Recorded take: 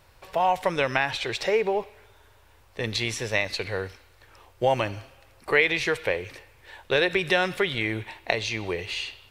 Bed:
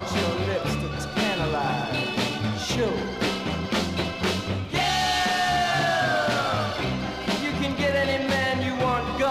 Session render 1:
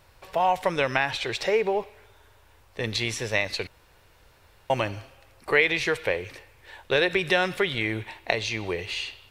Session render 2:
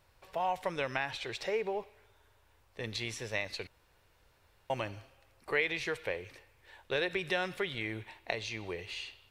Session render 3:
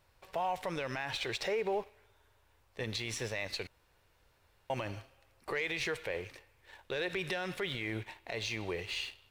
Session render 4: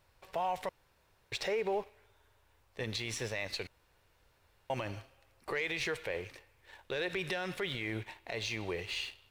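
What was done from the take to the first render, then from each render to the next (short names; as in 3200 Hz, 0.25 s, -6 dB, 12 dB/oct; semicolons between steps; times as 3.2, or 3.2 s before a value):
3.67–4.7 room tone
gain -10 dB
sample leveller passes 1; limiter -25.5 dBFS, peak gain reduction 11 dB
0.69–1.32 room tone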